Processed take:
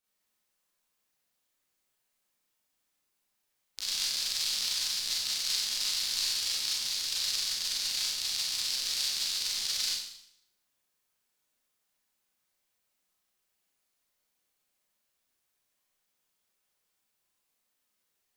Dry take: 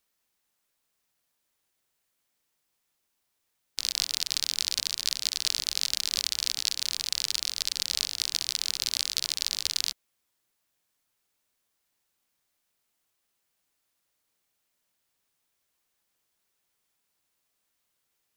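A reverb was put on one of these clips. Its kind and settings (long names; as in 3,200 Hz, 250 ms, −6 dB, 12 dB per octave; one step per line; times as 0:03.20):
four-comb reverb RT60 0.71 s, combs from 30 ms, DRR −8.5 dB
level −10.5 dB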